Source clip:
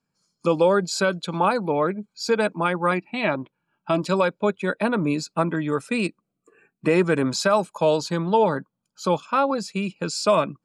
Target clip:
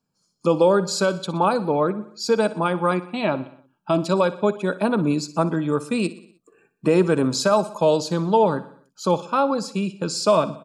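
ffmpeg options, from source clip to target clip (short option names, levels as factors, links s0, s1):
-af "equalizer=f=2000:w=1.9:g=-10,aecho=1:1:61|122|183|244|305:0.15|0.0838|0.0469|0.0263|0.0147,volume=1.26"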